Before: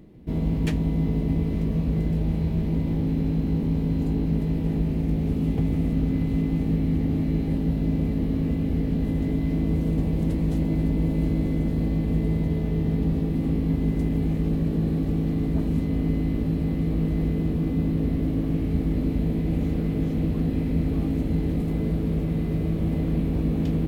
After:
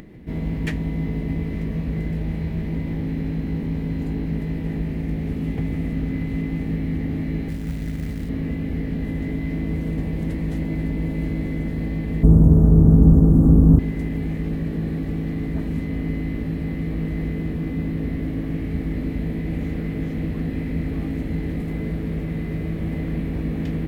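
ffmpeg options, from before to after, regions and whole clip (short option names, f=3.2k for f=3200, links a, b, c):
-filter_complex "[0:a]asettb=1/sr,asplit=3[a][b][c];[a]atrim=end=7.484[d];[b]atrim=start=7.48:end=8.29,asetpts=PTS-STARTPTS,afade=t=in:d=0.004:c=qsin,afade=t=out:st=0.806:d=0.004:c=qsin,acrossover=split=160|3000[e][f][g];[f]acompressor=threshold=-31dB:ratio=3:attack=3.2:release=140:knee=2.83:detection=peak[h];[e][h][g]amix=inputs=3:normalize=0,acrusher=bits=6:mode=log:mix=0:aa=0.000001[i];[c]atrim=start=8.286[j];[d][i]acrossfade=d=0.004:c1=hsin:c2=qsin[k];[k][j]acrossfade=d=0.004:c1=qsin:c2=hsin,asettb=1/sr,asplit=3[l][m][n];[l]atrim=end=12.234[o];[m]atrim=start=12.23:end=13.79,asetpts=PTS-STARTPTS,afade=t=in:d=0.004:c=qsin,afade=t=out:st=1.556:d=0.004:c=qsin,acontrast=57,asuperstop=centerf=3000:order=12:qfactor=0.63,lowshelf=f=240:g=10[p];[n]atrim=start=13.786[q];[o][p]acrossfade=d=0.004:c1=hsin:c2=qsin[r];[r][q]acrossfade=d=0.004:c1=qsin:c2=hsin,equalizer=f=1.9k:t=o:w=0.69:g=10.5,acompressor=mode=upward:threshold=-33dB:ratio=2.5,volume=-1.5dB"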